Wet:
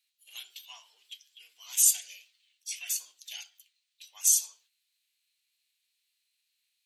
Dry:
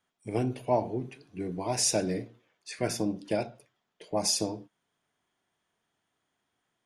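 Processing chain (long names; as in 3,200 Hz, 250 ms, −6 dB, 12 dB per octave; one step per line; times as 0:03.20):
formants moved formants +4 semitones
Chebyshev high-pass filter 2,900 Hz, order 3
level +6.5 dB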